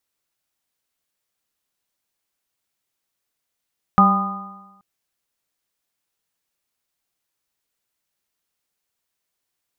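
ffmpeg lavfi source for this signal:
ffmpeg -f lavfi -i "aevalsrc='0.237*pow(10,-3*t/1.1)*sin(2*PI*193.34*t)+0.0266*pow(10,-3*t/1.1)*sin(2*PI*388.69*t)+0.0355*pow(10,-3*t/1.1)*sin(2*PI*588.05*t)+0.158*pow(10,-3*t/1.1)*sin(2*PI*793.32*t)+0.0631*pow(10,-3*t/1.1)*sin(2*PI*1006.33*t)+0.335*pow(10,-3*t/1.1)*sin(2*PI*1228.79*t)':duration=0.83:sample_rate=44100" out.wav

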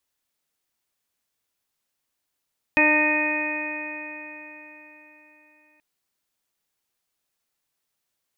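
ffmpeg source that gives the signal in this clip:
ffmpeg -f lavfi -i "aevalsrc='0.0794*pow(10,-3*t/4.04)*sin(2*PI*302.15*t)+0.0631*pow(10,-3*t/4.04)*sin(2*PI*605.18*t)+0.0562*pow(10,-3*t/4.04)*sin(2*PI*909.99*t)+0.0178*pow(10,-3*t/4.04)*sin(2*PI*1217.43*t)+0.0126*pow(10,-3*t/4.04)*sin(2*PI*1528.39*t)+0.1*pow(10,-3*t/4.04)*sin(2*PI*1843.69*t)+0.0282*pow(10,-3*t/4.04)*sin(2*PI*2164.16*t)+0.141*pow(10,-3*t/4.04)*sin(2*PI*2490.61*t)':duration=3.03:sample_rate=44100" out.wav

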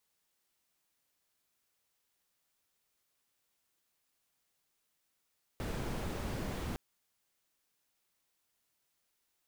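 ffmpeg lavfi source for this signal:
ffmpeg -f lavfi -i "anoisesrc=color=brown:amplitude=0.0624:duration=1.16:sample_rate=44100:seed=1" out.wav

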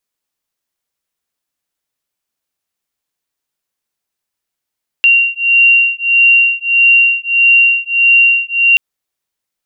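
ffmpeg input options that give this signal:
ffmpeg -f lavfi -i "aevalsrc='0.316*(sin(2*PI*2760*t)+sin(2*PI*2761.6*t))':duration=3.73:sample_rate=44100" out.wav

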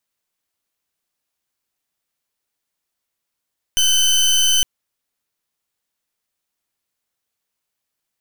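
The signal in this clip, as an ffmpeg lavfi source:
ffmpeg -f lavfi -i "aevalsrc='0.178*(2*lt(mod(3040*t,1),0.26)-1)':duration=0.86:sample_rate=44100" out.wav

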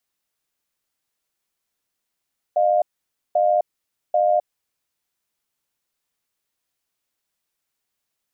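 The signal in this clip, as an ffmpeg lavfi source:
ffmpeg -f lavfi -i "aevalsrc='0.133*(sin(2*PI*612*t)+sin(2*PI*706*t))*clip(min(mod(t,0.79),0.26-mod(t,0.79))/0.005,0,1)':duration=2.32:sample_rate=44100" out.wav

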